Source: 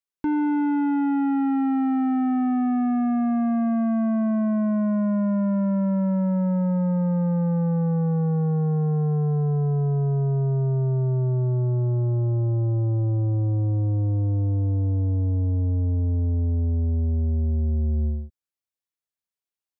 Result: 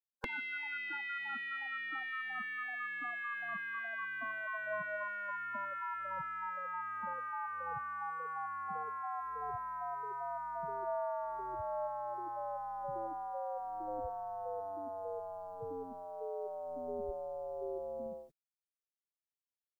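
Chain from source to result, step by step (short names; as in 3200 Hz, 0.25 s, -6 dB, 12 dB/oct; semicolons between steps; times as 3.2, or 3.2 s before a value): notch 630 Hz, Q 12; spectral gate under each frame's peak -25 dB weak; low shelf 85 Hz +11 dB; gain +9.5 dB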